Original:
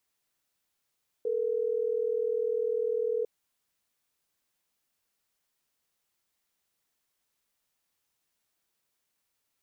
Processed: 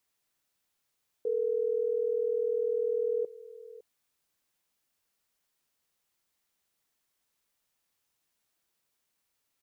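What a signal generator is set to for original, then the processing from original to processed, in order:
call progress tone ringback tone, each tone -29 dBFS
echo 0.558 s -18.5 dB

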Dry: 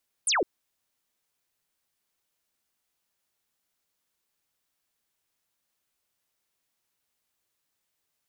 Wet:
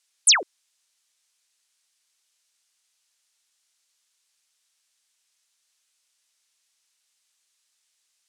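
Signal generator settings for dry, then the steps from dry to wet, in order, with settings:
laser zap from 11000 Hz, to 300 Hz, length 0.16 s sine, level -21.5 dB
weighting filter ITU-R 468

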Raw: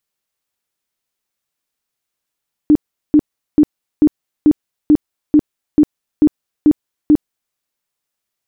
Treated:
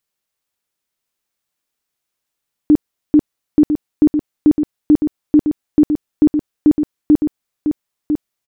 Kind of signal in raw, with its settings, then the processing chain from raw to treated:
tone bursts 300 Hz, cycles 16, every 0.44 s, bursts 11, -5 dBFS
echo 1 s -7 dB

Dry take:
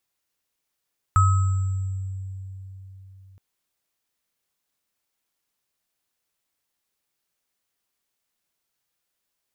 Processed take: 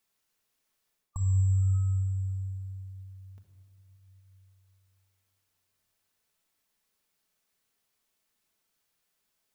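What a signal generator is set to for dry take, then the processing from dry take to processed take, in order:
sine partials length 2.22 s, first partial 95.6 Hz, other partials 1280/7670 Hz, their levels -2/-20 dB, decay 3.96 s, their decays 0.89/2.02 s, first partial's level -14 dB
spectral repair 1.03–1.73, 1200–5300 Hz both; reverse; compressor 6:1, threshold -29 dBFS; reverse; shoebox room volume 2500 m³, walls mixed, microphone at 1.5 m

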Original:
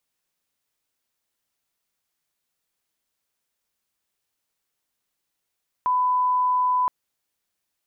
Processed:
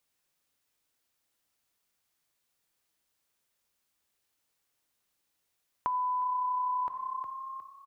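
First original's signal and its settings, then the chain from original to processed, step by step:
line-up tone -18 dBFS 1.02 s
frequency-shifting echo 0.36 s, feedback 37%, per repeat +32 Hz, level -14 dB; non-linear reverb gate 0.31 s falling, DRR 10 dB; compressor 5:1, threshold -30 dBFS

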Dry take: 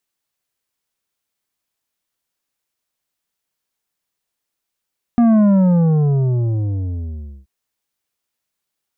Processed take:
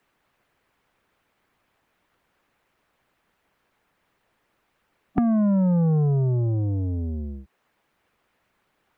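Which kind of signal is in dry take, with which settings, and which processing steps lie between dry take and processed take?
sub drop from 240 Hz, over 2.28 s, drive 8.5 dB, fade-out 2.06 s, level -10 dB
harmonic-percussive split harmonic -7 dB; three-band squash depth 70%

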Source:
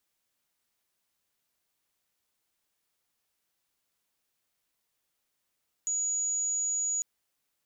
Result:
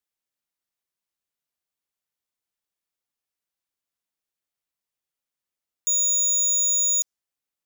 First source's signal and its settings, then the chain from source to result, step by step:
tone sine 6830 Hz -27 dBFS 1.15 s
dynamic EQ 6000 Hz, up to +8 dB, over -46 dBFS, Q 1.5; sample leveller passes 5

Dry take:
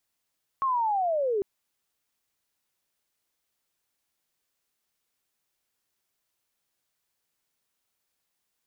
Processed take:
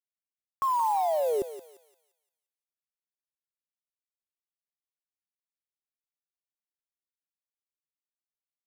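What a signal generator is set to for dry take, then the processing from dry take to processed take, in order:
chirp linear 1100 Hz -> 380 Hz -22.5 dBFS -> -23.5 dBFS 0.80 s
bit-crush 7-bit; on a send: thinning echo 0.174 s, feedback 43%, high-pass 770 Hz, level -8 dB

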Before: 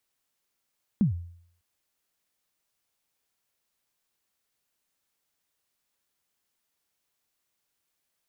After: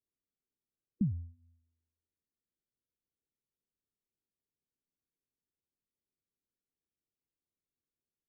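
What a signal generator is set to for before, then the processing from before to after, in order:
kick drum length 0.60 s, from 230 Hz, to 86 Hz, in 0.121 s, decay 0.62 s, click off, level -16 dB
spectral gate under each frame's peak -20 dB strong; inverse Chebyshev low-pass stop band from 900 Hz, stop band 40 dB; resonator 83 Hz, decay 1 s, harmonics odd, mix 50%

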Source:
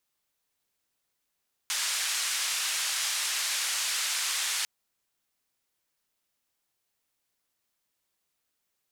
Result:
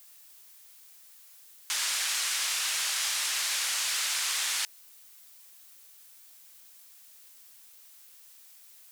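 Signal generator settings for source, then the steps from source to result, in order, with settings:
noise band 1400–8300 Hz, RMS -30 dBFS 2.95 s
added noise blue -54 dBFS

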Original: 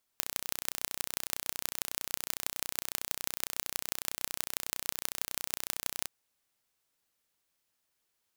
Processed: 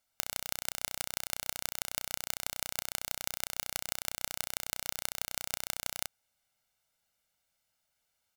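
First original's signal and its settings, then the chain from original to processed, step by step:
pulse train 30.9/s, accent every 5, -2.5 dBFS 5.87 s
high shelf 9400 Hz -4 dB; comb 1.4 ms, depth 64%

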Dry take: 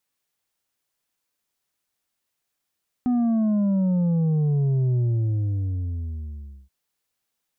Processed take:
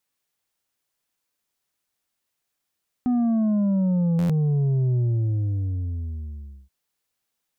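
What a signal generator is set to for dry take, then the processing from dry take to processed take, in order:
sub drop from 250 Hz, over 3.63 s, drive 5 dB, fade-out 1.73 s, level -19 dB
stuck buffer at 4.18, samples 512, times 9

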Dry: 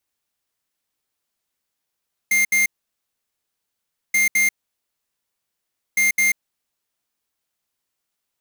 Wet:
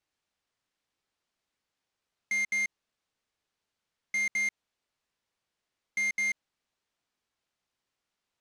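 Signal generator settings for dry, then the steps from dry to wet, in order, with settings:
beep pattern square 2110 Hz, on 0.14 s, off 0.07 s, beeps 2, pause 1.48 s, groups 3, -17 dBFS
limiter -26 dBFS; short-mantissa float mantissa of 2-bit; air absorption 83 m

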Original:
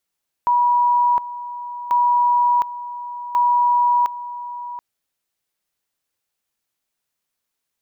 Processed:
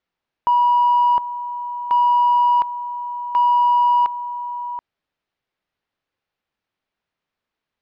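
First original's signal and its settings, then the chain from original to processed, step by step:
two-level tone 969 Hz -13 dBFS, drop 14.5 dB, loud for 0.71 s, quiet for 0.73 s, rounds 3
in parallel at -3 dB: soft clip -22.5 dBFS; on the sum: air absorption 270 m

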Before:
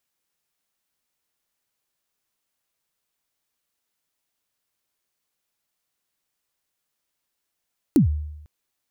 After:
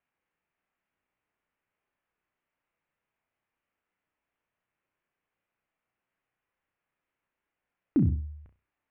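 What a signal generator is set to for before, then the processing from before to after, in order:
kick drum length 0.50 s, from 340 Hz, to 75 Hz, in 0.116 s, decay 0.89 s, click on, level -10 dB
flutter echo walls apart 5.6 m, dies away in 0.29 s; limiter -16.5 dBFS; steep low-pass 2600 Hz 36 dB/oct

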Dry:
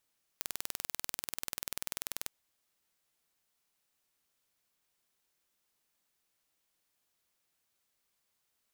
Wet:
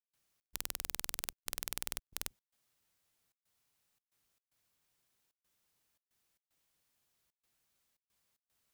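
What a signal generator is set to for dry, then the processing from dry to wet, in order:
pulse train 20.5/s, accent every 0, -8.5 dBFS 1.87 s
octaver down 1 oct, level +2 dB; step gate ".xx.xxxxxx.xxxx" 113 bpm -60 dB

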